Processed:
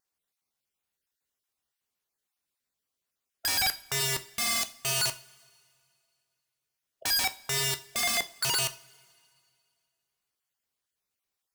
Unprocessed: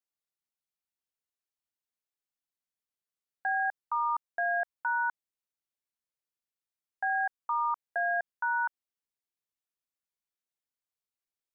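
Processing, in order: random spectral dropouts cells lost 21%; dynamic EQ 350 Hz, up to +8 dB, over -58 dBFS, Q 2.5; wrapped overs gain 31 dB; wow and flutter 19 cents; two-slope reverb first 0.35 s, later 2.3 s, from -21 dB, DRR 9 dB; gain +8 dB

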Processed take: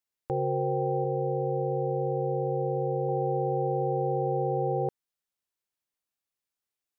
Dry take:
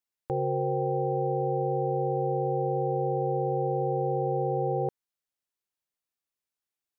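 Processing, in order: 1.04–3.09 notch comb 200 Hz

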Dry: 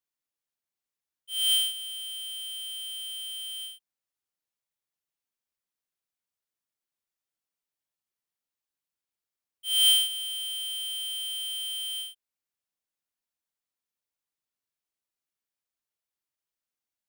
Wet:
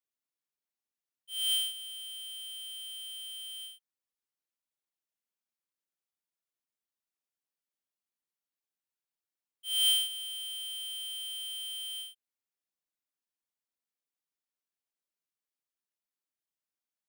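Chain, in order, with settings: resonant low shelf 150 Hz -8 dB, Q 1.5; gain -5.5 dB

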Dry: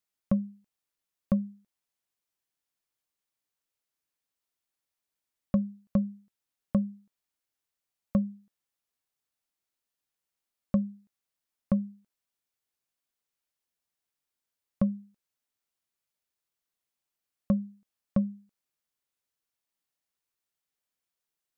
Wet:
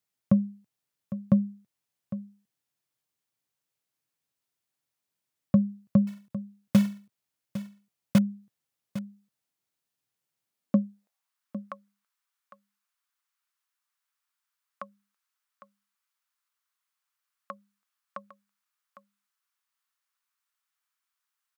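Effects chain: 6.07–8.19 block floating point 3-bit; high-pass sweep 120 Hz -> 1200 Hz, 10.46–11.34; echo 0.805 s -13.5 dB; gain +1.5 dB

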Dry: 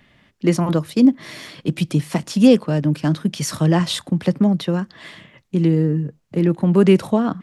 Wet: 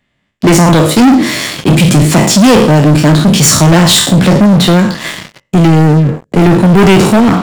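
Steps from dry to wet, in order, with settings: spectral trails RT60 0.48 s; bell 7400 Hz +8.5 dB 0.31 oct; sample leveller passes 5

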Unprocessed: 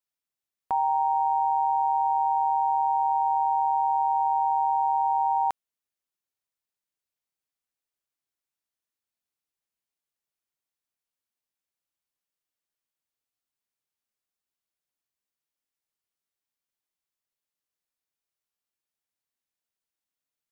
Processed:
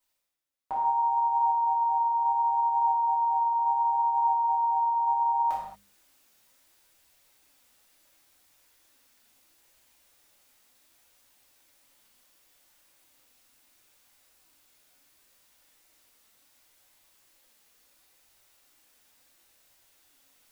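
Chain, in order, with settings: notches 50/100/150/200 Hz; reverse; upward compressor, threshold -43 dBFS; reverse; flange 0.71 Hz, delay 0.9 ms, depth 4 ms, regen +57%; non-linear reverb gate 0.26 s falling, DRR -7.5 dB; gain -3.5 dB

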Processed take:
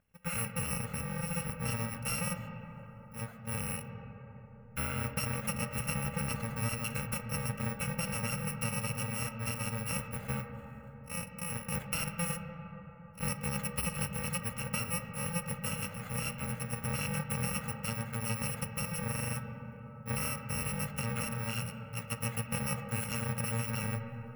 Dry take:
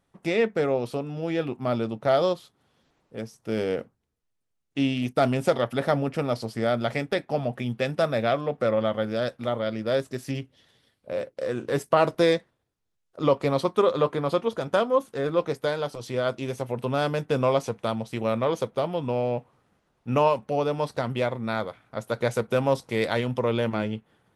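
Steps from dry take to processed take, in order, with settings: FFT order left unsorted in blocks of 128 samples; resonant high shelf 3100 Hz -12.5 dB, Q 1.5; compressor, threshold -31 dBFS, peak gain reduction 8 dB; on a send: reverb RT60 4.6 s, pre-delay 10 ms, DRR 6 dB

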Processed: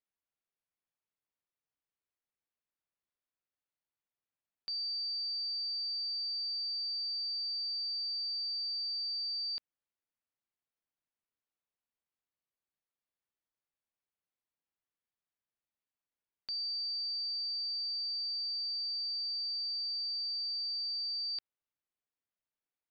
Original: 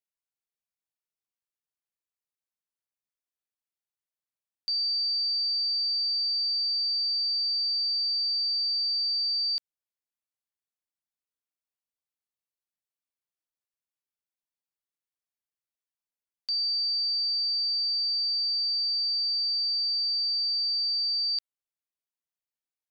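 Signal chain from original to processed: air absorption 280 m; gain +2 dB

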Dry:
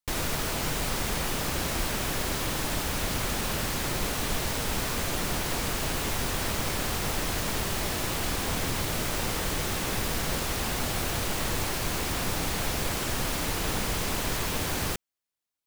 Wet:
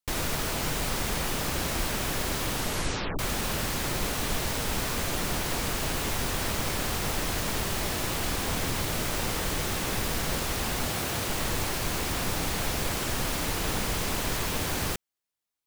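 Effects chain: 2.51 tape stop 0.68 s; 10.9–11.3 HPF 78 Hz

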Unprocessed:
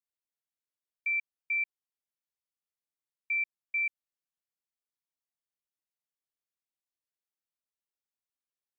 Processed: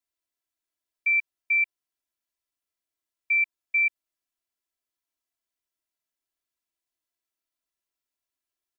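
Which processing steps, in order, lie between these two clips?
comb 3 ms, depth 91%; gain +2 dB

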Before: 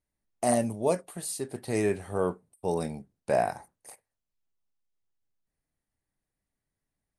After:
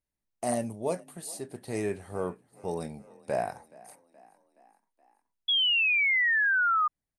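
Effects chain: frequency-shifting echo 0.423 s, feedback 58%, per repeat +32 Hz, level -22.5 dB; painted sound fall, 5.48–6.88, 1200–3400 Hz -20 dBFS; gain -4.5 dB

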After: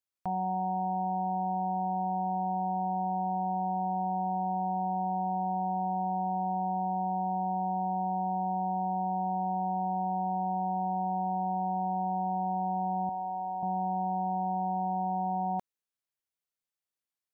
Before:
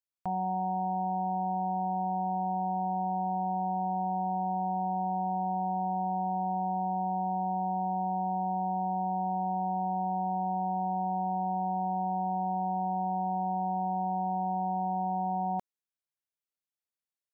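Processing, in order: 13.09–13.63 HPF 750 Hz 6 dB/oct

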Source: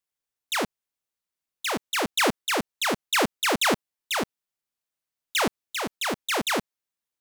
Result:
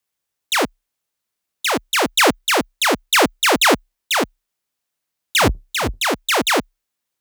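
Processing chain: 5.39–6.05 octaver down 2 oct, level +3 dB; frequency shift +32 Hz; gain +8.5 dB

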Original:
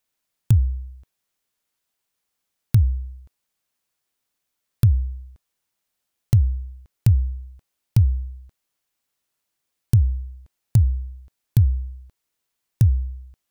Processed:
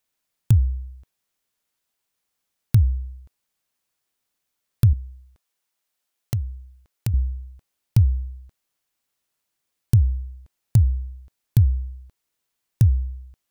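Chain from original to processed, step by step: 4.93–7.14 low shelf 220 Hz -11 dB

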